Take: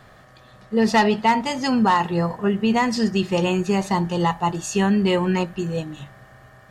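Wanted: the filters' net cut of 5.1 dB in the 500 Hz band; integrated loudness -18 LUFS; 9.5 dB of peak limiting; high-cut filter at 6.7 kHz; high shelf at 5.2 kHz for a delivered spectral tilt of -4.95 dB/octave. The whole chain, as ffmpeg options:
-af "lowpass=6700,equalizer=f=500:t=o:g=-7,highshelf=f=5200:g=6,volume=2.99,alimiter=limit=0.335:level=0:latency=1"

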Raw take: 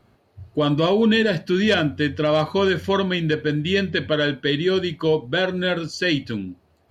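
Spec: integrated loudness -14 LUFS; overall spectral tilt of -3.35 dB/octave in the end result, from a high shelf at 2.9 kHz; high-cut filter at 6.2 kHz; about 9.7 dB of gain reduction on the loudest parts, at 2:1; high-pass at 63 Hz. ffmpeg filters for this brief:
-af "highpass=63,lowpass=6200,highshelf=f=2900:g=8,acompressor=threshold=0.0251:ratio=2,volume=5.62"

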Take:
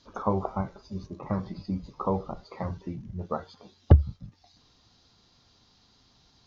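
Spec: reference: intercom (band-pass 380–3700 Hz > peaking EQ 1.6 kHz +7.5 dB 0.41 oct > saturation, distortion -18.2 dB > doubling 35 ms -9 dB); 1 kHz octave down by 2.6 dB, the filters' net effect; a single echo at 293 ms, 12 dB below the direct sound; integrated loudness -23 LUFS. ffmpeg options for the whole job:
-filter_complex "[0:a]highpass=380,lowpass=3700,equalizer=f=1000:t=o:g=-4,equalizer=f=1600:t=o:w=0.41:g=7.5,aecho=1:1:293:0.251,asoftclip=threshold=0.158,asplit=2[s0][s1];[s1]adelay=35,volume=0.355[s2];[s0][s2]amix=inputs=2:normalize=0,volume=6.31"

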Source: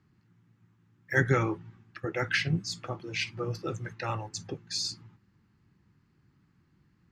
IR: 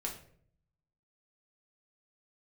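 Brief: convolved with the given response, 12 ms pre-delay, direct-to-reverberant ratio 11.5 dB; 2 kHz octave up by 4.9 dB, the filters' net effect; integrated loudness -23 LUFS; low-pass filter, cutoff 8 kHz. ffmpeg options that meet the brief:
-filter_complex "[0:a]lowpass=8000,equalizer=f=2000:t=o:g=6,asplit=2[s0][s1];[1:a]atrim=start_sample=2205,adelay=12[s2];[s1][s2]afir=irnorm=-1:irlink=0,volume=0.237[s3];[s0][s3]amix=inputs=2:normalize=0,volume=2"

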